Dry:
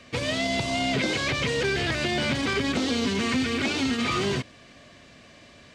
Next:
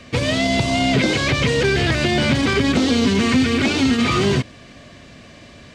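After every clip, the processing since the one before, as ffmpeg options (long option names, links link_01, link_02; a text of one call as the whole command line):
ffmpeg -i in.wav -af "lowshelf=frequency=300:gain=6,volume=6dB" out.wav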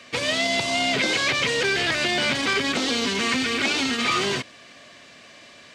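ffmpeg -i in.wav -af "highpass=frequency=880:poles=1" out.wav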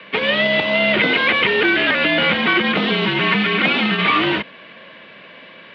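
ffmpeg -i in.wav -af "acrusher=bits=2:mode=log:mix=0:aa=0.000001,highpass=frequency=210:width_type=q:width=0.5412,highpass=frequency=210:width_type=q:width=1.307,lowpass=frequency=3400:width_type=q:width=0.5176,lowpass=frequency=3400:width_type=q:width=0.7071,lowpass=frequency=3400:width_type=q:width=1.932,afreqshift=-53,volume=7dB" out.wav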